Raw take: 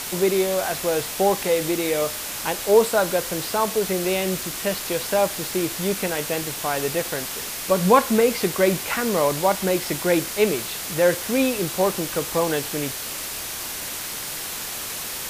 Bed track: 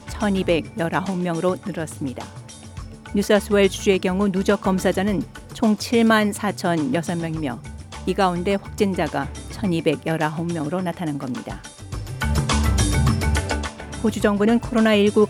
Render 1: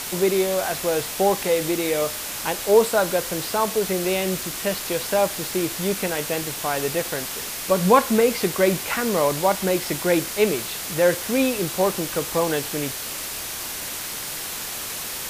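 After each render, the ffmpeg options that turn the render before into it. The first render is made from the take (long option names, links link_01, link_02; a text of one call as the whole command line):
ffmpeg -i in.wav -af anull out.wav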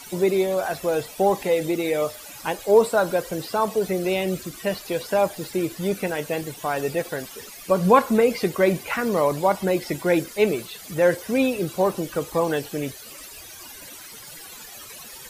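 ffmpeg -i in.wav -af "afftdn=noise_reduction=16:noise_floor=-31" out.wav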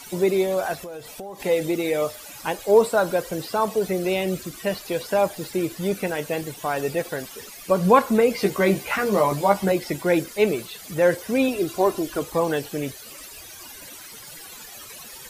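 ffmpeg -i in.wav -filter_complex "[0:a]asettb=1/sr,asplit=3[link_01][link_02][link_03];[link_01]atrim=end=0.744[link_04];[link_02]atrim=start=0.74:end=1.4,asetpts=PTS-STARTPTS,afade=type=in:duration=0.004:curve=qsin,afade=type=out:start_time=0.656:duration=0.004:curve=qsin,acompressor=threshold=-33dB:ratio=8:attack=3.2:release=140:knee=1:detection=peak[link_05];[link_03]atrim=start=1.396[link_06];[link_04][link_05]acrossfade=duration=0.004:curve1=hsin:curve2=qsin[link_07];[link_07][link_06]acrossfade=duration=0.004:curve1=qsin:curve2=hsin,asettb=1/sr,asplit=3[link_08][link_09][link_10];[link_08]atrim=end=8.374[link_11];[link_09]atrim=start=8.37:end=9.72,asetpts=PTS-STARTPTS,afade=type=in:duration=0.004:curve=qsin,afade=type=out:start_time=1.346:duration=0.004:curve=qsin,asplit=2[link_12][link_13];[link_13]adelay=15,volume=-3dB[link_14];[link_12][link_14]amix=inputs=2:normalize=0,atrim=end_sample=59535[link_15];[link_10]atrim=start=9.716[link_16];[link_11][link_15]acrossfade=duration=0.004:curve1=hsin:curve2=qsin[link_17];[link_17][link_16]acrossfade=duration=0.004:curve1=qsin:curve2=hsin,asettb=1/sr,asplit=3[link_18][link_19][link_20];[link_18]atrim=end=11.484[link_21];[link_19]atrim=start=11.48:end=12.22,asetpts=PTS-STARTPTS,afade=type=in:duration=0.004:curve=qsin,afade=type=out:start_time=0.736:duration=0.004:curve=qsin,aecho=1:1:2.9:0.57,atrim=end_sample=32634[link_22];[link_20]atrim=start=12.216[link_23];[link_21][link_22]acrossfade=duration=0.004:curve1=hsin:curve2=qsin[link_24];[link_24][link_23]acrossfade=duration=0.004:curve1=qsin:curve2=hsin" out.wav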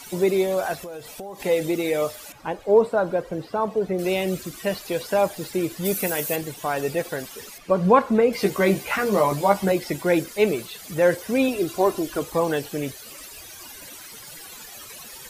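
ffmpeg -i in.wav -filter_complex "[0:a]asettb=1/sr,asplit=3[link_01][link_02][link_03];[link_01]atrim=end=2.324[link_04];[link_02]atrim=start=2.32:end=3.99,asetpts=PTS-STARTPTS,afade=type=in:duration=0.004:curve=qsin,afade=type=out:start_time=1.666:duration=0.004:curve=qsin,lowpass=frequency=1100:poles=1[link_05];[link_03]atrim=start=3.986[link_06];[link_04][link_05]acrossfade=duration=0.004:curve1=hsin:curve2=qsin[link_07];[link_07][link_06]acrossfade=duration=0.004:curve1=qsin:curve2=hsin,asplit=3[link_08][link_09][link_10];[link_08]afade=type=out:start_time=5.84:duration=0.02[link_11];[link_09]aemphasis=mode=production:type=50fm,afade=type=in:start_time=5.84:duration=0.02,afade=type=out:start_time=6.35:duration=0.02[link_12];[link_10]afade=type=in:start_time=6.35:duration=0.02[link_13];[link_11][link_12][link_13]amix=inputs=3:normalize=0,asettb=1/sr,asplit=3[link_14][link_15][link_16];[link_14]atrim=end=7.584[link_17];[link_15]atrim=start=7.58:end=8.33,asetpts=PTS-STARTPTS,afade=type=in:duration=0.004:curve=qsin,afade=type=out:start_time=0.746:duration=0.004:curve=qsin,aemphasis=mode=reproduction:type=75kf[link_18];[link_16]atrim=start=8.326[link_19];[link_17][link_18]acrossfade=duration=0.004:curve1=hsin:curve2=qsin[link_20];[link_20][link_19]acrossfade=duration=0.004:curve1=qsin:curve2=hsin" out.wav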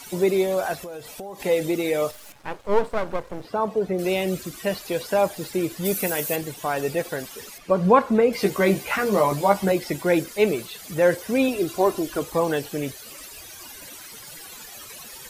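ffmpeg -i in.wav -filter_complex "[0:a]asettb=1/sr,asplit=3[link_01][link_02][link_03];[link_01]atrim=end=2.114[link_04];[link_02]atrim=start=2.11:end=3.45,asetpts=PTS-STARTPTS,afade=type=in:duration=0.004:curve=qsin,afade=type=out:start_time=1.336:duration=0.004:curve=qsin,aeval=exprs='max(val(0),0)':channel_layout=same[link_05];[link_03]atrim=start=3.446[link_06];[link_04][link_05]acrossfade=duration=0.004:curve1=hsin:curve2=qsin[link_07];[link_07][link_06]acrossfade=duration=0.004:curve1=qsin:curve2=hsin" out.wav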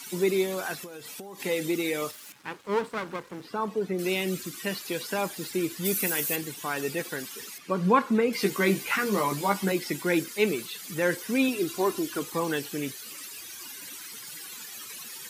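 ffmpeg -i in.wav -af "highpass=190,equalizer=frequency=630:width_type=o:width=0.93:gain=-13" out.wav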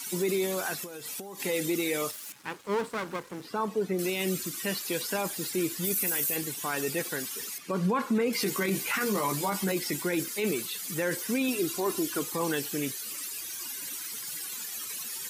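ffmpeg -i in.wav -filter_complex "[0:a]acrossover=split=5600[link_01][link_02];[link_02]acontrast=33[link_03];[link_01][link_03]amix=inputs=2:normalize=0,alimiter=limit=-19.5dB:level=0:latency=1:release=15" out.wav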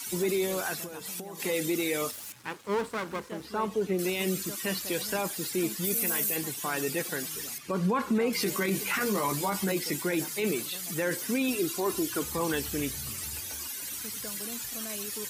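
ffmpeg -i in.wav -i bed.wav -filter_complex "[1:a]volume=-26dB[link_01];[0:a][link_01]amix=inputs=2:normalize=0" out.wav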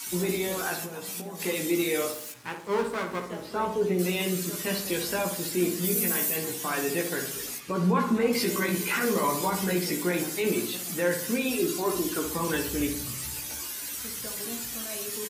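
ffmpeg -i in.wav -filter_complex "[0:a]asplit=2[link_01][link_02];[link_02]adelay=17,volume=-4dB[link_03];[link_01][link_03]amix=inputs=2:normalize=0,asplit=2[link_04][link_05];[link_05]adelay=61,lowpass=frequency=1500:poles=1,volume=-5dB,asplit=2[link_06][link_07];[link_07]adelay=61,lowpass=frequency=1500:poles=1,volume=0.54,asplit=2[link_08][link_09];[link_09]adelay=61,lowpass=frequency=1500:poles=1,volume=0.54,asplit=2[link_10][link_11];[link_11]adelay=61,lowpass=frequency=1500:poles=1,volume=0.54,asplit=2[link_12][link_13];[link_13]adelay=61,lowpass=frequency=1500:poles=1,volume=0.54,asplit=2[link_14][link_15];[link_15]adelay=61,lowpass=frequency=1500:poles=1,volume=0.54,asplit=2[link_16][link_17];[link_17]adelay=61,lowpass=frequency=1500:poles=1,volume=0.54[link_18];[link_04][link_06][link_08][link_10][link_12][link_14][link_16][link_18]amix=inputs=8:normalize=0" out.wav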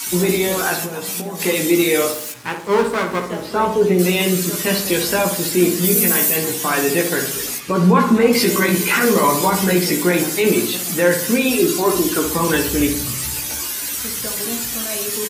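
ffmpeg -i in.wav -af "volume=11dB" out.wav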